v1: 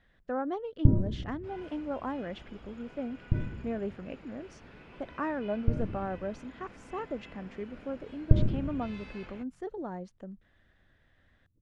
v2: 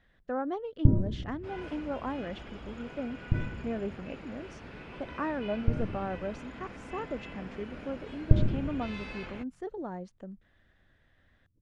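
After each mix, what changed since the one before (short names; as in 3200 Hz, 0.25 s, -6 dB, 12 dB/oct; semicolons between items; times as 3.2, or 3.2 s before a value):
second sound +6.5 dB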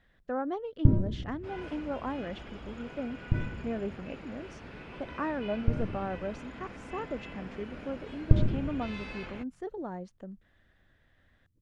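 first sound: remove LPF 1100 Hz 12 dB/oct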